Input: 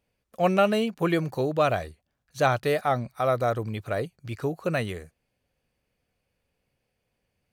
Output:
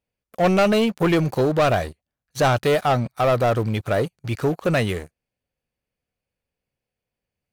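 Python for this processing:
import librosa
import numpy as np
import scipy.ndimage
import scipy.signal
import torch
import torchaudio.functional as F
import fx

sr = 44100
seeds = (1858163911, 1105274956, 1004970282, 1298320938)

y = fx.leveller(x, sr, passes=3)
y = F.gain(torch.from_numpy(y), -2.5).numpy()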